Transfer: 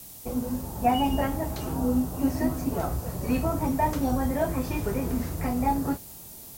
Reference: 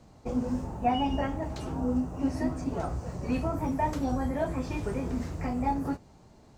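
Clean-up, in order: noise print and reduce 10 dB; gain 0 dB, from 0.76 s -3.5 dB

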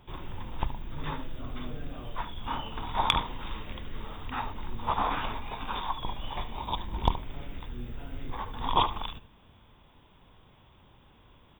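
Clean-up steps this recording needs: clip repair -7 dBFS; inverse comb 73 ms -13 dB

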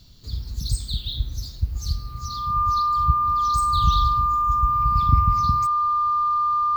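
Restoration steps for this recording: notch 1200 Hz, Q 30

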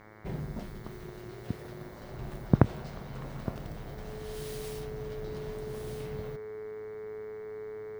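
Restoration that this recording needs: de-hum 107 Hz, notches 21; notch 430 Hz, Q 30

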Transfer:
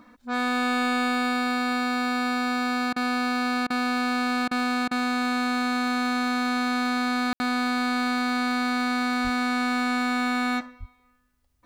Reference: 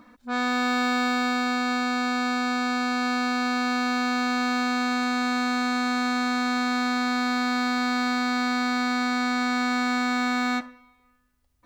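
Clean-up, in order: clip repair -17.5 dBFS; de-plosive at 9.23/10.79; room tone fill 7.33–7.4; interpolate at 2.93/3.67/4.48/4.88, 31 ms

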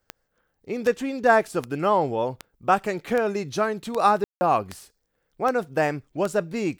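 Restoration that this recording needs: de-click; room tone fill 4.24–4.41

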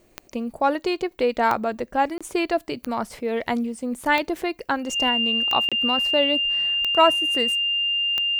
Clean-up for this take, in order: de-click; notch 2800 Hz, Q 30; interpolate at 2.18/5.69, 26 ms

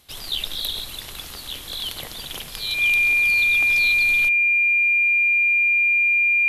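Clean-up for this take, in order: clip repair -12.5 dBFS; notch 2400 Hz, Q 30

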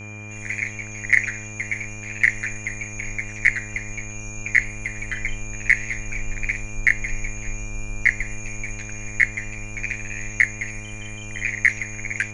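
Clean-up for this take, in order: de-hum 104.9 Hz, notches 18; notch 2400 Hz, Q 30

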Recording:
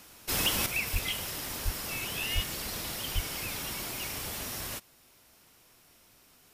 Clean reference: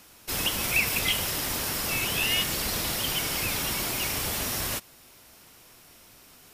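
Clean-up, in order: clip repair -20.5 dBFS; de-plosive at 0.92/1.64/2.34/3.14; gain 0 dB, from 0.66 s +7.5 dB

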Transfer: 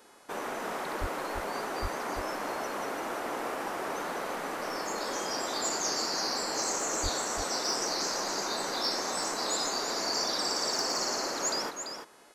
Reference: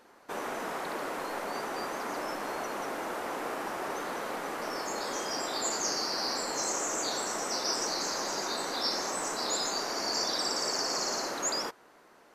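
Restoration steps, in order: clip repair -21.5 dBFS; de-hum 424.7 Hz, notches 27; 1–1.12 HPF 140 Hz 24 dB/oct; 1.81–1.93 HPF 140 Hz 24 dB/oct; 7.02–7.14 HPF 140 Hz 24 dB/oct; inverse comb 0.338 s -7.5 dB

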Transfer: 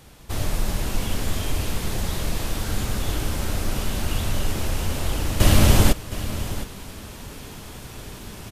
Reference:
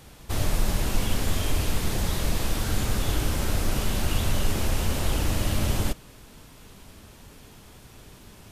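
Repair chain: inverse comb 0.715 s -13.5 dB; gain correction -10 dB, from 5.4

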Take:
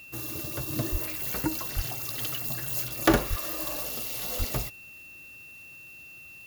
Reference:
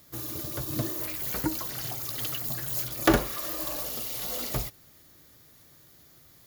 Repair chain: notch 2700 Hz, Q 30; de-plosive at 0.91/1.75/3.29/4.38

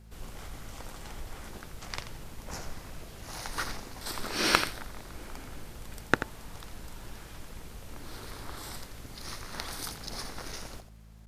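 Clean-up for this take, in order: de-click; de-hum 54.3 Hz, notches 4; inverse comb 85 ms -11 dB

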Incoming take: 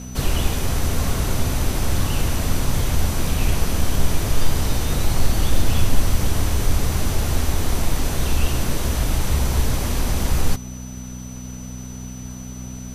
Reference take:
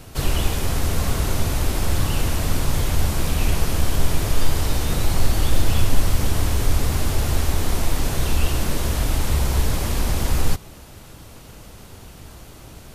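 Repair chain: de-hum 62.5 Hz, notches 4; notch 6000 Hz, Q 30

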